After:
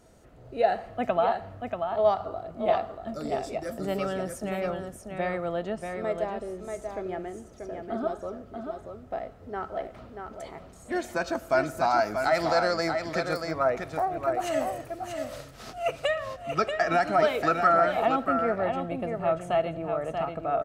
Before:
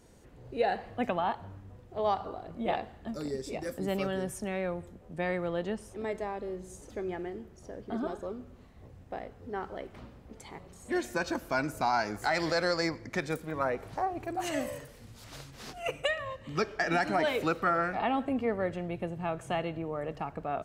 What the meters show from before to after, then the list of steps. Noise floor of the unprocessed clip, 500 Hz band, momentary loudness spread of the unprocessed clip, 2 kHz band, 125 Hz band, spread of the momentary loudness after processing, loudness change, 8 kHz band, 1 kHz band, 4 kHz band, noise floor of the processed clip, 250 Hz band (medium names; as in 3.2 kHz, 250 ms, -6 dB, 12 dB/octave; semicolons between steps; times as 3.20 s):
-53 dBFS, +6.5 dB, 16 LU, +2.0 dB, +1.0 dB, 14 LU, +4.5 dB, +1.0 dB, +5.5 dB, +1.0 dB, -49 dBFS, +1.0 dB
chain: small resonant body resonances 660/1300 Hz, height 11 dB, ringing for 35 ms; on a send: delay 635 ms -6 dB